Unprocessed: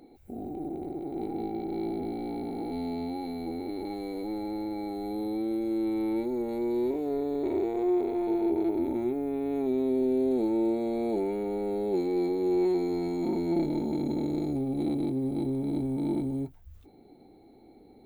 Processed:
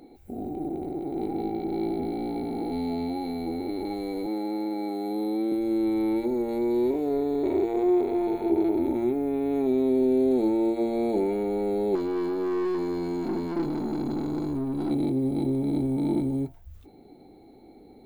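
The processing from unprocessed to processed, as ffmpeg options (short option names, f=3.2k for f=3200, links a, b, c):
-filter_complex "[0:a]asettb=1/sr,asplit=3[a][b][c];[a]atrim=end=4.264[d];[b]atrim=start=4.26:end=5.52,asetpts=PTS-STARTPTS,afade=t=in:d=0.004:c=qsin,afade=t=out:st=1.256:d=0.004:c=qsin,highpass=f=170:w=0.5412,highpass=f=170:w=1.3066[e];[c]atrim=start=5.516[f];[d][e]acrossfade=d=0.004:c1=hsin:c2=qsin[g];[g][f]acrossfade=d=0.004:c1=qsin:c2=hsin,asettb=1/sr,asplit=3[h][i][j];[h]atrim=end=11.954[k];[i]atrim=start=11.95:end=14.91,asetpts=PTS-STARTPTS,afade=t=in:d=0.004:c=qsin,afade=t=out:st=2.956:d=0.004:c=qsin,aeval=exprs='(tanh(25.1*val(0)+0.2)-tanh(0.2))/25.1':c=same[l];[j]atrim=start=14.906[m];[k][l]acrossfade=d=0.004:c1=hsin:c2=qsin[n];[n][m]acrossfade=d=0.004:c1=qsin:c2=hsin,bandreject=f=114.2:t=h:w=4,bandreject=f=228.4:t=h:w=4,bandreject=f=342.6:t=h:w=4,bandreject=f=456.8:t=h:w=4,bandreject=f=571:t=h:w=4,bandreject=f=685.2:t=h:w=4,bandreject=f=799.4:t=h:w=4,bandreject=f=913.6:t=h:w=4,bandreject=f=1.0278k:t=h:w=4,bandreject=f=1.142k:t=h:w=4,bandreject=f=1.2562k:t=h:w=4,bandreject=f=1.3704k:t=h:w=4,bandreject=f=1.4846k:t=h:w=4,bandreject=f=1.5988k:t=h:w=4,bandreject=f=1.713k:t=h:w=4,bandreject=f=1.8272k:t=h:w=4,bandreject=f=1.9414k:t=h:w=4,bandreject=f=2.0556k:t=h:w=4,bandreject=f=2.1698k:t=h:w=4,bandreject=f=2.284k:t=h:w=4,bandreject=f=2.3982k:t=h:w=4,bandreject=f=2.5124k:t=h:w=4,bandreject=f=2.6266k:t=h:w=4,bandreject=f=2.7408k:t=h:w=4,bandreject=f=2.855k:t=h:w=4,bandreject=f=2.9692k:t=h:w=4,bandreject=f=3.0834k:t=h:w=4,volume=4dB"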